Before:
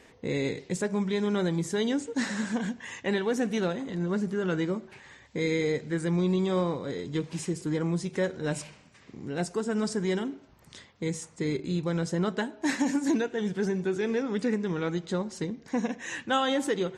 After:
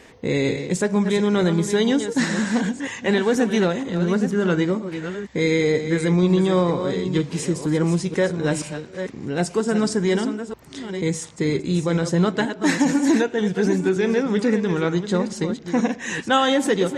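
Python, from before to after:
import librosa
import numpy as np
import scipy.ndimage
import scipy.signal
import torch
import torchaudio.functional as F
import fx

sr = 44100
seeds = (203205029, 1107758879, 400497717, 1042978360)

y = fx.reverse_delay(x, sr, ms=479, wet_db=-9)
y = F.gain(torch.from_numpy(y), 8.0).numpy()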